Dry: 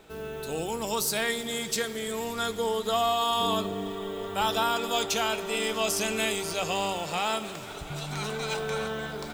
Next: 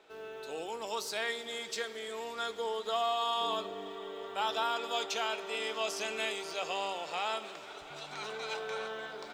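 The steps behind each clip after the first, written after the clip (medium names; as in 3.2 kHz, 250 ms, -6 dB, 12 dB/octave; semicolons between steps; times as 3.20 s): three-band isolator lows -20 dB, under 320 Hz, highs -15 dB, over 6.3 kHz; trim -5.5 dB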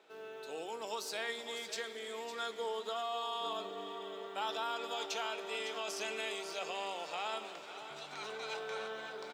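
high-pass 150 Hz 12 dB/octave; peak limiter -25.5 dBFS, peak gain reduction 6 dB; delay 556 ms -11.5 dB; trim -3 dB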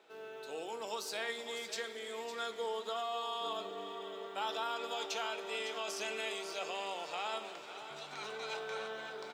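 reverberation RT60 0.40 s, pre-delay 8 ms, DRR 13 dB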